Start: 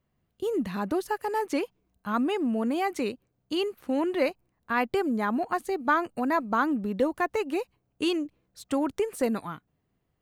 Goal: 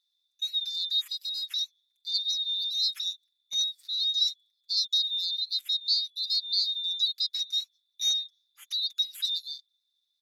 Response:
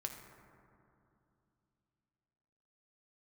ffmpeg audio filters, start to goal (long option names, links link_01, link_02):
-filter_complex "[0:a]afftfilt=real='real(if(lt(b,736),b+184*(1-2*mod(floor(b/184),2)),b),0)':imag='imag(if(lt(b,736),b+184*(1-2*mod(floor(b/184),2)),b),0)':win_size=2048:overlap=0.75,aecho=1:1:5.1:0.88,asetrate=38170,aresample=44100,atempo=1.15535,acrossover=split=1400[link_01][link_02];[link_01]acrusher=bits=4:mix=0:aa=0.5[link_03];[link_03][link_02]amix=inputs=2:normalize=0,volume=-4.5dB"